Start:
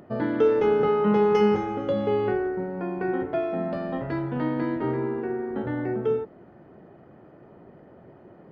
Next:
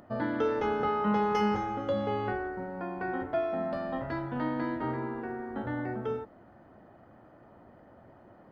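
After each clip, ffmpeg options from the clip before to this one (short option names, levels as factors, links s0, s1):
-af "equalizer=f=160:t=o:w=0.67:g=-10,equalizer=f=400:t=o:w=0.67:g=-11,equalizer=f=2500:t=o:w=0.67:g=-5"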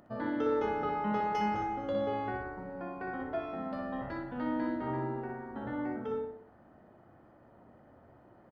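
-filter_complex "[0:a]asplit=2[s0][s1];[s1]adelay=61,lowpass=f=2400:p=1,volume=0.708,asplit=2[s2][s3];[s3]adelay=61,lowpass=f=2400:p=1,volume=0.48,asplit=2[s4][s5];[s5]adelay=61,lowpass=f=2400:p=1,volume=0.48,asplit=2[s6][s7];[s7]adelay=61,lowpass=f=2400:p=1,volume=0.48,asplit=2[s8][s9];[s9]adelay=61,lowpass=f=2400:p=1,volume=0.48,asplit=2[s10][s11];[s11]adelay=61,lowpass=f=2400:p=1,volume=0.48[s12];[s0][s2][s4][s6][s8][s10][s12]amix=inputs=7:normalize=0,volume=0.531"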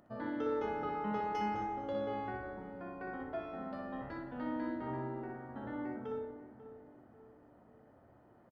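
-filter_complex "[0:a]asplit=2[s0][s1];[s1]adelay=543,lowpass=f=1300:p=1,volume=0.237,asplit=2[s2][s3];[s3]adelay=543,lowpass=f=1300:p=1,volume=0.47,asplit=2[s4][s5];[s5]adelay=543,lowpass=f=1300:p=1,volume=0.47,asplit=2[s6][s7];[s7]adelay=543,lowpass=f=1300:p=1,volume=0.47,asplit=2[s8][s9];[s9]adelay=543,lowpass=f=1300:p=1,volume=0.47[s10];[s0][s2][s4][s6][s8][s10]amix=inputs=6:normalize=0,volume=0.562"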